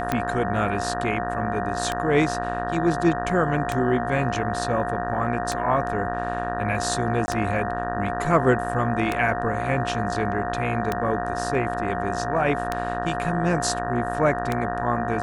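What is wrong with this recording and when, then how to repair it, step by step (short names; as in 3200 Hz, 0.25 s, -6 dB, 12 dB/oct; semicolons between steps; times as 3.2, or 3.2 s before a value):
buzz 60 Hz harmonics 31 -30 dBFS
tick 33 1/3 rpm -9 dBFS
tone 710 Hz -28 dBFS
7.26–7.28 gap 20 ms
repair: de-click; de-hum 60 Hz, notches 31; notch 710 Hz, Q 30; interpolate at 7.26, 20 ms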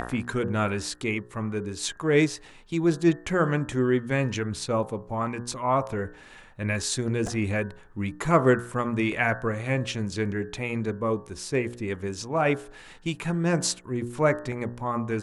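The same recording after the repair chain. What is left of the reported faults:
none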